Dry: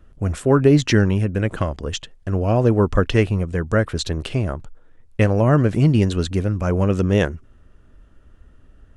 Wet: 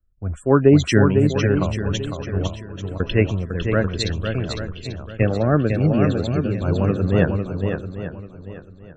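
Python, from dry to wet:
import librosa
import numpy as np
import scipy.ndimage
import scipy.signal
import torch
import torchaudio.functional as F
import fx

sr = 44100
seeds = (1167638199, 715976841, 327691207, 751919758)

p1 = fx.notch_comb(x, sr, f0_hz=980.0, at=(5.22, 6.5))
p2 = fx.spec_topn(p1, sr, count=64)
p3 = fx.comb_fb(p2, sr, f0_hz=330.0, decay_s=0.91, harmonics='all', damping=0.0, mix_pct=100, at=(2.47, 3.0))
p4 = p3 + fx.echo_swing(p3, sr, ms=840, ratio=1.5, feedback_pct=42, wet_db=-4, dry=0)
p5 = fx.band_widen(p4, sr, depth_pct=70)
y = F.gain(torch.from_numpy(p5), -2.0).numpy()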